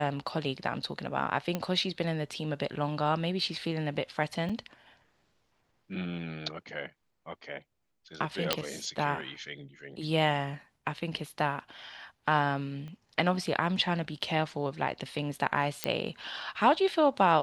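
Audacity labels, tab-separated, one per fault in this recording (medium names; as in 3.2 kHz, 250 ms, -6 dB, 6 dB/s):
1.550000	1.550000	pop -17 dBFS
4.490000	4.500000	dropout 5.4 ms
8.530000	8.530000	pop -8 dBFS
12.880000	12.880000	pop -33 dBFS
15.840000	15.840000	pop -11 dBFS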